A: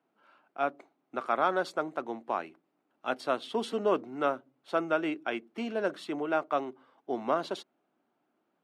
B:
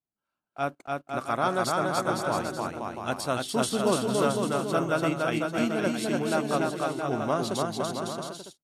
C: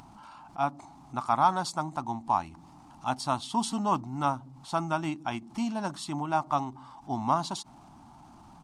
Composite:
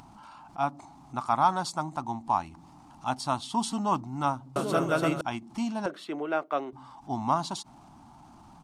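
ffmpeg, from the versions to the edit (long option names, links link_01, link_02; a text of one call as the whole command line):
ffmpeg -i take0.wav -i take1.wav -i take2.wav -filter_complex "[2:a]asplit=3[link_01][link_02][link_03];[link_01]atrim=end=4.562[link_04];[1:a]atrim=start=4.558:end=5.212[link_05];[link_02]atrim=start=5.208:end=5.862[link_06];[0:a]atrim=start=5.858:end=6.732[link_07];[link_03]atrim=start=6.728[link_08];[link_04][link_05]acrossfade=duration=0.004:curve1=hsin:curve2=hsin[link_09];[link_09][link_06]acrossfade=duration=0.004:curve1=hsin:curve2=hsin[link_10];[link_10][link_07]acrossfade=duration=0.004:curve1=hsin:curve2=hsin[link_11];[link_11][link_08]acrossfade=duration=0.004:curve1=hsin:curve2=hsin" out.wav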